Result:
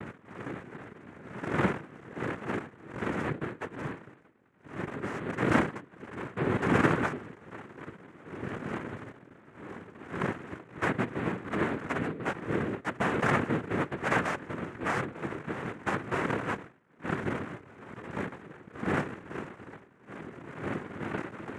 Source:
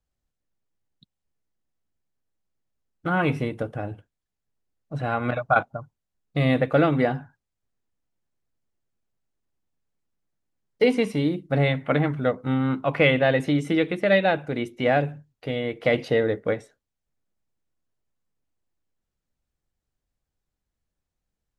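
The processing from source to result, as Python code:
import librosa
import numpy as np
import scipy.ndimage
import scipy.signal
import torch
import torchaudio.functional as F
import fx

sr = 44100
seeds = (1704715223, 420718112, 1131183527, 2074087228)

y = fx.dmg_wind(x, sr, seeds[0], corner_hz=460.0, level_db=-26.0)
y = scipy.signal.sosfilt(scipy.signal.ellip(4, 1.0, 40, 710.0, 'lowpass', fs=sr, output='sos'), y)
y = np.maximum(y, 0.0)
y = fx.noise_vocoder(y, sr, seeds[1], bands=3)
y = y * librosa.db_to_amplitude(-4.0)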